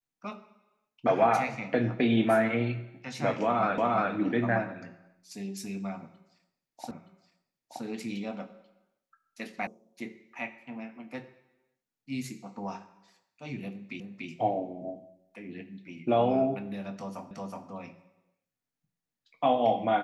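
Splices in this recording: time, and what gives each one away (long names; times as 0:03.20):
0:03.78: the same again, the last 0.35 s
0:06.91: the same again, the last 0.92 s
0:09.67: cut off before it has died away
0:14.00: the same again, the last 0.29 s
0:17.31: the same again, the last 0.37 s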